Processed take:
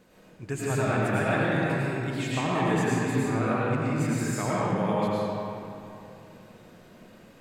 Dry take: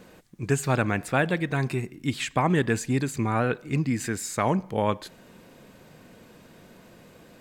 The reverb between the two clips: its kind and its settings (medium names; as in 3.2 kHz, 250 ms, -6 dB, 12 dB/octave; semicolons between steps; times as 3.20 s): algorithmic reverb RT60 2.9 s, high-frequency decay 0.6×, pre-delay 65 ms, DRR -8 dB; trim -9 dB